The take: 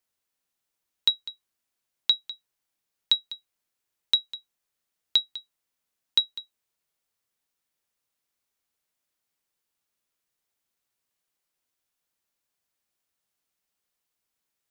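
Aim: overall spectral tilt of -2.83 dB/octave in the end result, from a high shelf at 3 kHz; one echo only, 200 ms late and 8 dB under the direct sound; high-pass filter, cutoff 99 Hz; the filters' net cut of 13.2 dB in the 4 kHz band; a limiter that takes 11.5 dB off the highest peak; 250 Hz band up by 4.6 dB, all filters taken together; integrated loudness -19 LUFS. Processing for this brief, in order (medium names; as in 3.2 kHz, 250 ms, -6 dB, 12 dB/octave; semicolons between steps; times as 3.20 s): high-pass 99 Hz; peaking EQ 250 Hz +6 dB; treble shelf 3 kHz -8.5 dB; peaking EQ 4 kHz -8 dB; peak limiter -28 dBFS; delay 200 ms -8 dB; trim +27 dB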